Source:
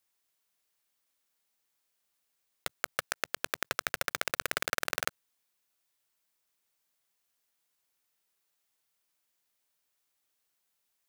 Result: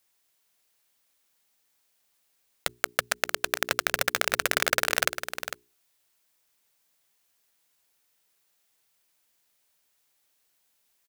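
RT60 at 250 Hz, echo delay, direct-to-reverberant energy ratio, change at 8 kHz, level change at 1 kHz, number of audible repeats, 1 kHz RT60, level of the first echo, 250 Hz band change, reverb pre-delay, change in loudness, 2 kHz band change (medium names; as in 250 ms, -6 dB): no reverb, 452 ms, no reverb, +8.0 dB, +6.5 dB, 1, no reverb, -10.0 dB, +7.0 dB, no reverb, +7.0 dB, +7.5 dB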